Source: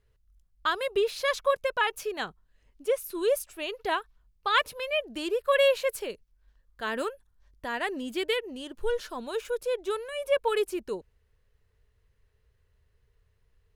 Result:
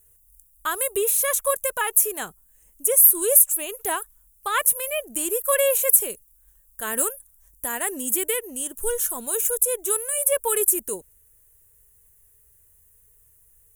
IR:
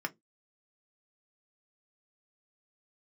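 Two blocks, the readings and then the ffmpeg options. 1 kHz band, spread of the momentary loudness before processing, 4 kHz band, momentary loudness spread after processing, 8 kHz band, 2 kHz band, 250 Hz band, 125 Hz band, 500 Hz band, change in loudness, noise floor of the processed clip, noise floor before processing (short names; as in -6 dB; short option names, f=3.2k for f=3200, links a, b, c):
+1.0 dB, 10 LU, -2.5 dB, 15 LU, +25.5 dB, 0.0 dB, +1.0 dB, n/a, +1.0 dB, +9.0 dB, -58 dBFS, -69 dBFS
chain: -filter_complex "[0:a]acrossover=split=2800[a][b];[b]acompressor=threshold=-40dB:ratio=4:attack=1:release=60[c];[a][c]amix=inputs=2:normalize=0,aexciter=amount=14.3:drive=10:freq=7.3k,volume=1dB"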